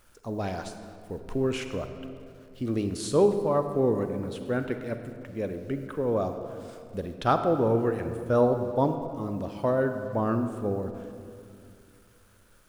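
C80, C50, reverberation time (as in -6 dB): 8.5 dB, 8.0 dB, 2.4 s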